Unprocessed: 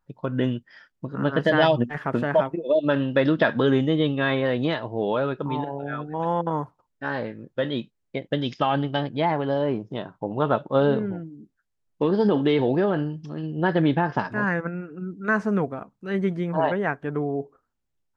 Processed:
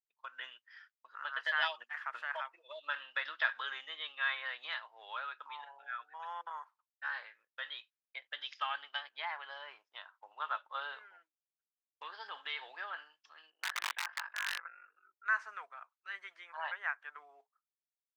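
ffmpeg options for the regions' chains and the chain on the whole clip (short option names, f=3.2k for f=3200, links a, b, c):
-filter_complex "[0:a]asettb=1/sr,asplit=3[a][b][c];[a]atrim=end=13.504[d];[b]atrim=start=13.5:end=15.26,asetpts=PTS-STARTPTS,afade=t=in:d=0.004:c=qsin,afade=t=out:st=1.756:d=0.004:c=qsin,acrossover=split=160 3500:gain=0.2 1 0.0794[e][f][g];[e][f][g]amix=inputs=3:normalize=0,aeval=exprs='val(0)*sin(2*PI*24*n/s)':c=same,aeval=exprs='(mod(7.08*val(0)+1,2)-1)/7.08':c=same[h];[c]atrim=start=15.256[i];[d][h]acrossfade=d=0.004:c1=hsin:c2=qsin[j];[j][i]acrossfade=d=0.004:c1=qsin:c2=hsin,highpass=f=1.2k:w=0.5412,highpass=f=1.2k:w=1.3066,agate=range=-33dB:threshold=-57dB:ratio=3:detection=peak,lowpass=f=3.5k:p=1,volume=-5dB"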